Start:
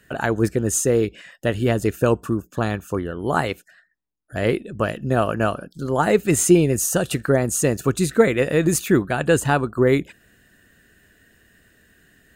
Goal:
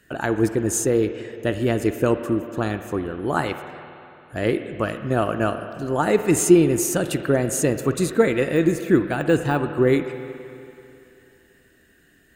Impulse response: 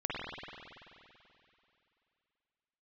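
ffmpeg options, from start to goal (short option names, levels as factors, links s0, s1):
-filter_complex "[0:a]asettb=1/sr,asplit=3[s0][s1][s2];[s0]atrim=end=8.544[s3];[s1]atrim=start=8.54:end=9.76,asetpts=PTS-STARTPTS,afade=t=in:d=0.004:c=qsin,afade=t=out:st=1.216:d=0.004:c=qsin,deesser=0.7[s4];[s2]atrim=start=9.756[s5];[s3][s4]acrossfade=d=0.004:c1=hsin:c2=qsin[s6];[s6][s5]acrossfade=d=0.004:c1=qsin:c2=hsin,equalizer=f=320:t=o:w=0.41:g=6,asplit=2[s7][s8];[1:a]atrim=start_sample=2205,lowshelf=f=330:g=-8[s9];[s8][s9]afir=irnorm=-1:irlink=0,volume=0.266[s10];[s7][s10]amix=inputs=2:normalize=0,volume=0.631"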